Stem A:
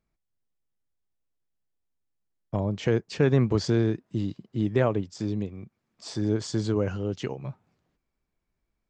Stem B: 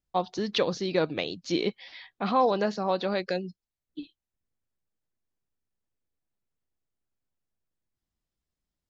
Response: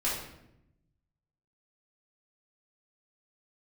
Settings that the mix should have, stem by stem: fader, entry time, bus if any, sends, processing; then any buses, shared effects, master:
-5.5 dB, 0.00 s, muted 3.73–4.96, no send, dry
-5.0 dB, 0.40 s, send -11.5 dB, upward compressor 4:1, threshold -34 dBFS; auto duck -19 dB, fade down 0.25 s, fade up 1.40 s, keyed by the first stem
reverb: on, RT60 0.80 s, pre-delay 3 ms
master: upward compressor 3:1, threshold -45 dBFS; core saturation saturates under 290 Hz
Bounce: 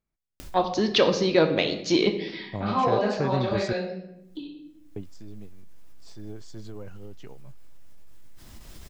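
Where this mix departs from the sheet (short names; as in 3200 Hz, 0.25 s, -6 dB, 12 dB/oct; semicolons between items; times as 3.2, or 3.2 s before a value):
stem B -5.0 dB -> +4.0 dB; master: missing upward compressor 3:1, threshold -45 dBFS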